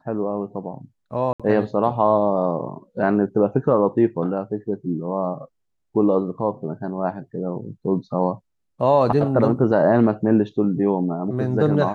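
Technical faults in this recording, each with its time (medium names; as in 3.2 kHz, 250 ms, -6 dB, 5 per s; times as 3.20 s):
1.33–1.40 s: dropout 66 ms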